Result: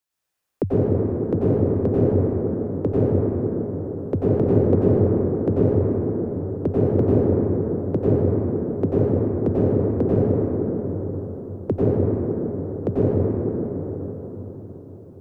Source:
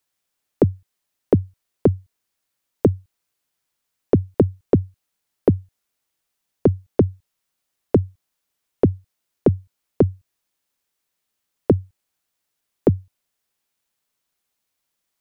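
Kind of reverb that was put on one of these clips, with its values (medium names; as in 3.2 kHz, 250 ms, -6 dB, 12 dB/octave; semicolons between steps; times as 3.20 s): plate-style reverb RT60 5 s, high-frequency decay 0.25×, pre-delay 80 ms, DRR -10 dB; trim -8 dB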